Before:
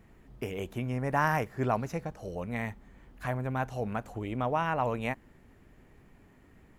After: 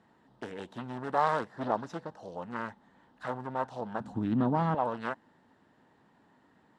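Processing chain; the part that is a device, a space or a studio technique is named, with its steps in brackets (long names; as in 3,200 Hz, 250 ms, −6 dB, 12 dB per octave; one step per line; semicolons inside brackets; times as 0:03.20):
full-range speaker at full volume (highs frequency-modulated by the lows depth 0.8 ms; loudspeaker in its box 200–8,300 Hz, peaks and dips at 390 Hz −5 dB, 910 Hz +8 dB, 1,600 Hz +3 dB, 2,300 Hz −10 dB, 3,800 Hz +5 dB, 6,600 Hz −6 dB)
0:04.00–0:04.75: low shelf with overshoot 350 Hz +13 dB, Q 1.5
level −2.5 dB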